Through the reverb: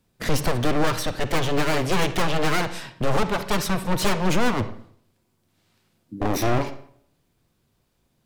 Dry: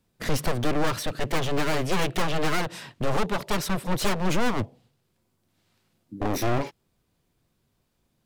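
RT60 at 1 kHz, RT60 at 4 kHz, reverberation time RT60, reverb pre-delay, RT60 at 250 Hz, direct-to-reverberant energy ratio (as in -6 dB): 0.60 s, 0.45 s, 0.65 s, 39 ms, 0.60 s, 11.0 dB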